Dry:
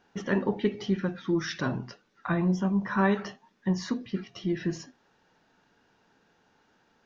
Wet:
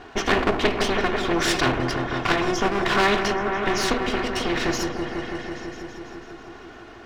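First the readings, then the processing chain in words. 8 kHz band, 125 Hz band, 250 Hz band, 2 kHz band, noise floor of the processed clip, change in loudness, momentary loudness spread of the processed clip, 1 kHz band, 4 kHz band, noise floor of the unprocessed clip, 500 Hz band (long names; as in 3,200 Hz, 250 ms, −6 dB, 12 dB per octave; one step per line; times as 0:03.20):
can't be measured, 0.0 dB, +2.0 dB, +12.0 dB, −43 dBFS, +6.5 dB, 18 LU, +12.5 dB, +16.0 dB, −68 dBFS, +9.0 dB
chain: lower of the sound and its delayed copy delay 2.8 ms
low-pass filter 2,200 Hz 6 dB per octave
on a send: echo whose low-pass opens from repeat to repeat 165 ms, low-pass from 400 Hz, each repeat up 1 octave, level −6 dB
on the sum: every bin compressed towards the loudest bin 2 to 1
level +9 dB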